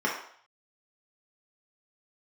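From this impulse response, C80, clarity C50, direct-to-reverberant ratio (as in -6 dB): 8.0 dB, 4.5 dB, -4.5 dB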